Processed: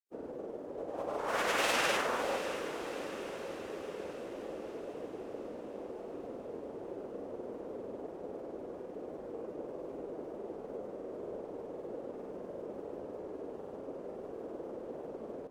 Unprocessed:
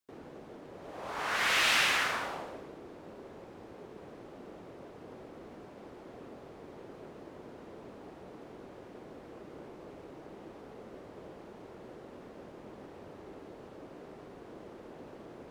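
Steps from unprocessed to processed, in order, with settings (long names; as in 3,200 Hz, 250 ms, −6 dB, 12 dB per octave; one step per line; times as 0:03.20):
graphic EQ with 10 bands 125 Hz −4 dB, 250 Hz +3 dB, 500 Hz +10 dB, 2,000 Hz −5 dB, 4,000 Hz −6 dB
granular cloud, pitch spread up and down by 0 semitones
feedback delay with all-pass diffusion 614 ms, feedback 59%, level −11 dB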